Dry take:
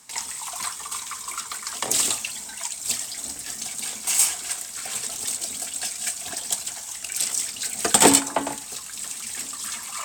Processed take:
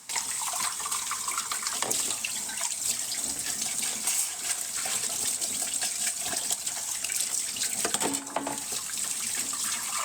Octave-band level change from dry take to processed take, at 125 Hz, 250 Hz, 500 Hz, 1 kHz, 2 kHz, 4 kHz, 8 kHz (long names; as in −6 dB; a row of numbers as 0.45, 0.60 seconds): −7.0, −11.0, −9.5, −5.5, −3.0, −3.0, −3.0 decibels